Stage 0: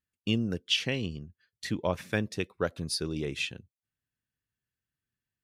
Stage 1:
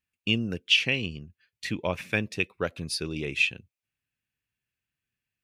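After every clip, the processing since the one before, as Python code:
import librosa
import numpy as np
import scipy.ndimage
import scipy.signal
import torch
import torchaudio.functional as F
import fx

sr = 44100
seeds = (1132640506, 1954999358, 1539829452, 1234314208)

y = fx.peak_eq(x, sr, hz=2500.0, db=11.5, octaves=0.53)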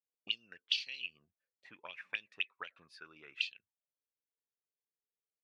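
y = fx.auto_wah(x, sr, base_hz=460.0, top_hz=4400.0, q=6.9, full_db=-21.5, direction='up')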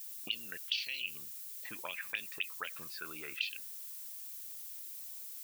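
y = fx.dmg_noise_colour(x, sr, seeds[0], colour='violet', level_db=-58.0)
y = fx.dmg_crackle(y, sr, seeds[1], per_s=19.0, level_db=-66.0)
y = fx.env_flatten(y, sr, amount_pct=50)
y = y * librosa.db_to_amplitude(-3.0)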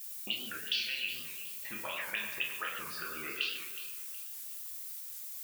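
y = fx.echo_feedback(x, sr, ms=368, feedback_pct=31, wet_db=-14.0)
y = fx.rev_fdn(y, sr, rt60_s=1.6, lf_ratio=0.8, hf_ratio=0.5, size_ms=85.0, drr_db=-3.0)
y = fx.record_warp(y, sr, rpm=78.0, depth_cents=160.0)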